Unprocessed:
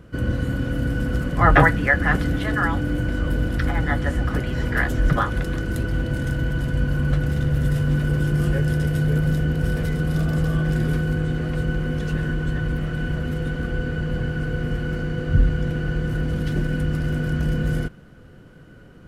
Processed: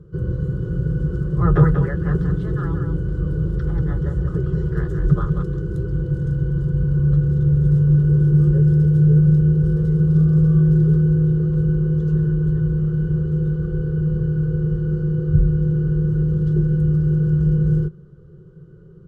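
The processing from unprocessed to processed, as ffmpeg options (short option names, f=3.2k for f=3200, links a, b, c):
-filter_complex "[0:a]asplit=3[a][b][c];[a]afade=t=out:st=0.61:d=0.02[d];[b]aecho=1:1:187:0.473,afade=t=in:st=0.61:d=0.02,afade=t=out:st=5.42:d=0.02[e];[c]afade=t=in:st=5.42:d=0.02[f];[d][e][f]amix=inputs=3:normalize=0,firequalizer=gain_entry='entry(110,0);entry(160,11);entry(250,-21);entry(370,9);entry(680,-18);entry(1200,-7);entry(2200,-27);entry(3300,-16);entry(7200,-15);entry(12000,-24)':delay=0.05:min_phase=1,volume=-1dB"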